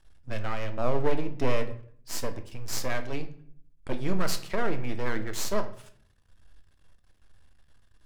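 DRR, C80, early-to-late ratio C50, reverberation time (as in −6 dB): 7.5 dB, 17.0 dB, 13.5 dB, 0.55 s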